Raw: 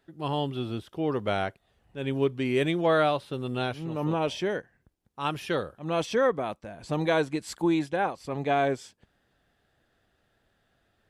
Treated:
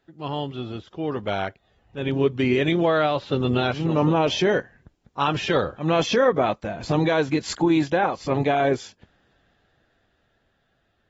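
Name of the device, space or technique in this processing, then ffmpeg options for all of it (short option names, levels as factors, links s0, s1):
low-bitrate web radio: -af "dynaudnorm=f=590:g=9:m=4.47,alimiter=limit=0.251:level=0:latency=1:release=105" -ar 44100 -c:a aac -b:a 24k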